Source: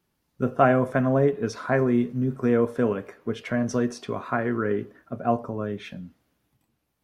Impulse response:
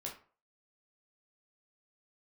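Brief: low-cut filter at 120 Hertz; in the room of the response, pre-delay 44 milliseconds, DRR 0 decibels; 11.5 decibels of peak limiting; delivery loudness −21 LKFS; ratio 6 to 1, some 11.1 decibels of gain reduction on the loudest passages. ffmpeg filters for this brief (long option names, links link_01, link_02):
-filter_complex "[0:a]highpass=120,acompressor=threshold=-25dB:ratio=6,alimiter=limit=-24dB:level=0:latency=1,asplit=2[link_01][link_02];[1:a]atrim=start_sample=2205,adelay=44[link_03];[link_02][link_03]afir=irnorm=-1:irlink=0,volume=1.5dB[link_04];[link_01][link_04]amix=inputs=2:normalize=0,volume=10.5dB"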